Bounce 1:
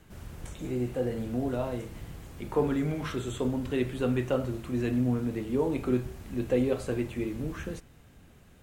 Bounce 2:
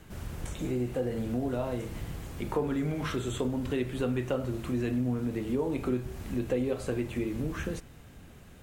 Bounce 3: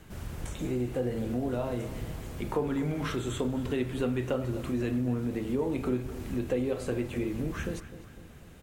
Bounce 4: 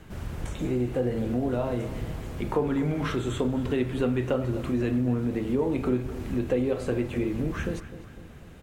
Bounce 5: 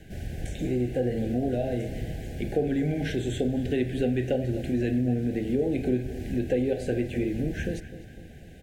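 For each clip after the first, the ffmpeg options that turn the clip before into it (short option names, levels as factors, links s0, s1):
-af "acompressor=threshold=0.02:ratio=2.5,volume=1.68"
-filter_complex "[0:a]asplit=2[s0][s1];[s1]adelay=253,lowpass=f=3200:p=1,volume=0.211,asplit=2[s2][s3];[s3]adelay=253,lowpass=f=3200:p=1,volume=0.5,asplit=2[s4][s5];[s5]adelay=253,lowpass=f=3200:p=1,volume=0.5,asplit=2[s6][s7];[s7]adelay=253,lowpass=f=3200:p=1,volume=0.5,asplit=2[s8][s9];[s9]adelay=253,lowpass=f=3200:p=1,volume=0.5[s10];[s0][s2][s4][s6][s8][s10]amix=inputs=6:normalize=0"
-af "highshelf=f=5000:g=-7.5,volume=1.58"
-af "asuperstop=centerf=1100:order=20:qfactor=1.6"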